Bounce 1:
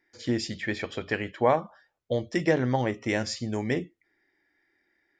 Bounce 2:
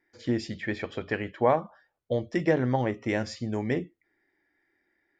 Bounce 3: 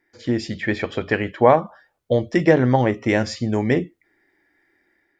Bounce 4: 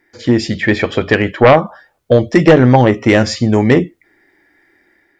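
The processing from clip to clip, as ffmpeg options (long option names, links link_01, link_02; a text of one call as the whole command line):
ffmpeg -i in.wav -af "highshelf=frequency=3600:gain=-10.5" out.wav
ffmpeg -i in.wav -af "dynaudnorm=framelen=330:gausssize=3:maxgain=4dB,volume=5dB" out.wav
ffmpeg -i in.wav -af "aeval=exprs='0.891*sin(PI/2*2*val(0)/0.891)':channel_layout=same" out.wav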